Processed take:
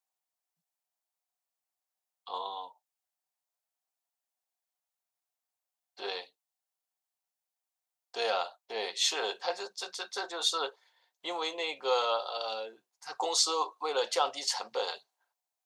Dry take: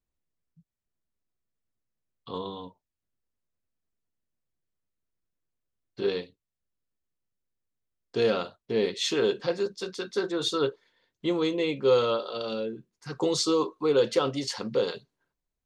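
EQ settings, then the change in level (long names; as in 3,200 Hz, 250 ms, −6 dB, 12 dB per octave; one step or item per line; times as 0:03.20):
high-pass with resonance 770 Hz, resonance Q 5.3
high-shelf EQ 3,300 Hz +11.5 dB
−6.0 dB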